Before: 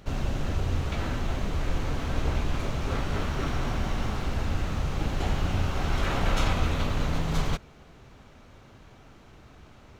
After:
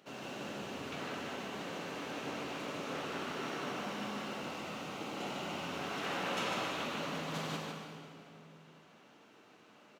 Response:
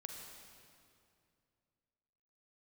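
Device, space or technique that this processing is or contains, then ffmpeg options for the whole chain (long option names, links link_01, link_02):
PA in a hall: -filter_complex "[0:a]highpass=210,asettb=1/sr,asplit=3[link_01][link_02][link_03];[link_01]atrim=end=4.254[link_04];[link_02]atrim=start=4.25:end=5.65,asetpts=PTS-STARTPTS,afade=type=in:duration=0.004:curve=qsin,afade=type=out:start_time=1.396:duration=0.004:curve=qsin,bandreject=frequency=1700:width=9[link_05];[link_03]atrim=start=5.646[link_06];[link_04][link_05]acrossfade=duration=0.004:curve1=hsin:curve2=qsin[link_07];[link_07][link_06]acrossfade=duration=0.004:curve1=qsin:curve2=hsin,highpass=170,equalizer=frequency=2800:width_type=o:width=0.27:gain=5,aecho=1:1:150:0.531[link_08];[1:a]atrim=start_sample=2205[link_09];[link_08][link_09]afir=irnorm=-1:irlink=0,volume=-3.5dB"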